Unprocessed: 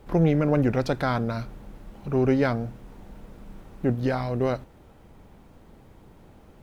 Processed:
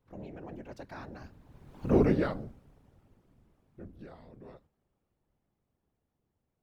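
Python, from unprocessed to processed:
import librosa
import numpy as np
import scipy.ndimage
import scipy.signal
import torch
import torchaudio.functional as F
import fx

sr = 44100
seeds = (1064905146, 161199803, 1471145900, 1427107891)

y = fx.doppler_pass(x, sr, speed_mps=37, closest_m=4.3, pass_at_s=1.96)
y = fx.whisperise(y, sr, seeds[0])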